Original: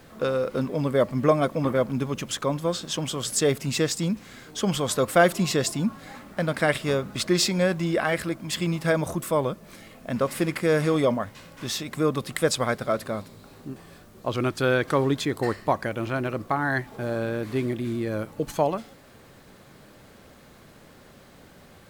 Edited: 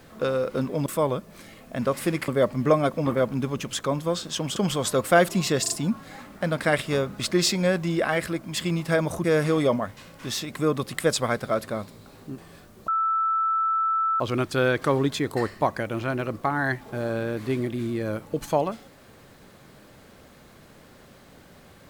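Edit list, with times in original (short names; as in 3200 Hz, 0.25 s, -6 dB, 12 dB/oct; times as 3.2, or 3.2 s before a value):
3.14–4.6 cut
5.66 stutter 0.04 s, 3 plays
9.2–10.62 move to 0.86
14.26 add tone 1320 Hz -20.5 dBFS 1.32 s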